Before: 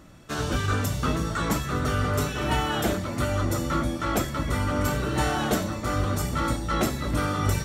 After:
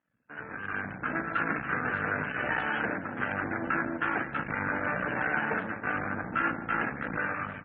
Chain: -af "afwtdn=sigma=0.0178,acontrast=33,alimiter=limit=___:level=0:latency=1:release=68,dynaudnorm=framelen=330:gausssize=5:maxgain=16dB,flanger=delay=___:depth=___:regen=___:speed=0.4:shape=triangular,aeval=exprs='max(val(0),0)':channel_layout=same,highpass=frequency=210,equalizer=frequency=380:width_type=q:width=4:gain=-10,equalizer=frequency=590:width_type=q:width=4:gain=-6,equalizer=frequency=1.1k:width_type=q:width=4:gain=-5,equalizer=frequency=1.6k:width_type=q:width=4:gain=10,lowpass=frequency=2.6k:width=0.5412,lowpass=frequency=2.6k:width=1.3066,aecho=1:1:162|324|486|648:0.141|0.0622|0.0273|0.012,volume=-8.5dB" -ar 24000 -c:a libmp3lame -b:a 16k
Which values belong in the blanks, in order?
-13dB, 1.6, 1.5, 55